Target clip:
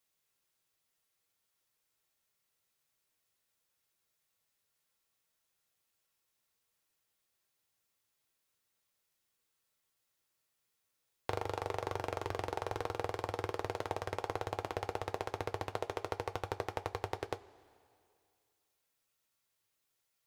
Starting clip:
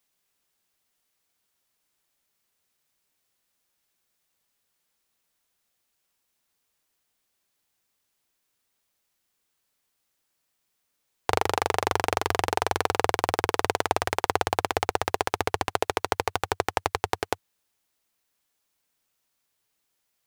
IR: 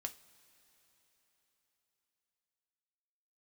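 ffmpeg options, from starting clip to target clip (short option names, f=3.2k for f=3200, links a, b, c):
-filter_complex "[0:a]acrossover=split=860|6200[a][b][c];[a]acompressor=threshold=-28dB:ratio=4[d];[b]acompressor=threshold=-38dB:ratio=4[e];[c]acompressor=threshold=-56dB:ratio=4[f];[d][e][f]amix=inputs=3:normalize=0[g];[1:a]atrim=start_sample=2205,asetrate=83790,aresample=44100[h];[g][h]afir=irnorm=-1:irlink=0,volume=3dB"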